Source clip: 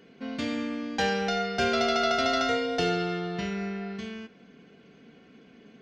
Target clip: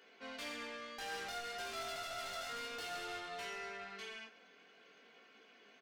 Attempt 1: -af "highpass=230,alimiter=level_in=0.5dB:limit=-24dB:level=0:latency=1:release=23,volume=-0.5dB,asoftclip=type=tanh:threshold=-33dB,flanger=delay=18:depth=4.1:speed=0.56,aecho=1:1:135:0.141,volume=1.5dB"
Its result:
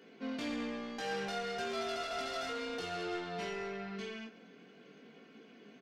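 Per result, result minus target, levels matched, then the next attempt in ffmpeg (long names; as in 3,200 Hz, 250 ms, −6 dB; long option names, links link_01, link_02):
250 Hz band +10.5 dB; soft clipping: distortion −6 dB
-af "highpass=710,alimiter=level_in=0.5dB:limit=-24dB:level=0:latency=1:release=23,volume=-0.5dB,asoftclip=type=tanh:threshold=-33dB,flanger=delay=18:depth=4.1:speed=0.56,aecho=1:1:135:0.141,volume=1.5dB"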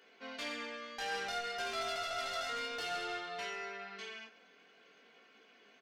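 soft clipping: distortion −6 dB
-af "highpass=710,alimiter=level_in=0.5dB:limit=-24dB:level=0:latency=1:release=23,volume=-0.5dB,asoftclip=type=tanh:threshold=-40.5dB,flanger=delay=18:depth=4.1:speed=0.56,aecho=1:1:135:0.141,volume=1.5dB"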